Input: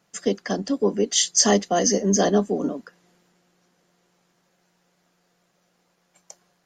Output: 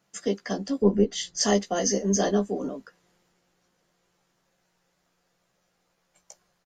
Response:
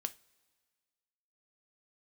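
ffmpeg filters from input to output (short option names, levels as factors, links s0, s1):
-filter_complex "[0:a]asettb=1/sr,asplit=3[s0][s1][s2];[s0]atrim=end=0.824[s3];[s1]atrim=start=0.82:end=1.41,asetpts=PTS-STARTPTS,afade=t=in:d=0.004:c=qsin,afade=t=out:st=0.586:d=0.004:c=qsin,aemphasis=mode=reproduction:type=riaa[s4];[s2]atrim=start=1.406[s5];[s3][s4]acrossfade=d=0.004:c1=hsin:c2=qsin[s6];[s6][s5]acrossfade=d=0.004:c1=qsin:c2=hsin,asplit=2[s7][s8];[s8]adelay=15,volume=0.501[s9];[s7][s9]amix=inputs=2:normalize=0,asubboost=boost=3.5:cutoff=100,volume=0.562"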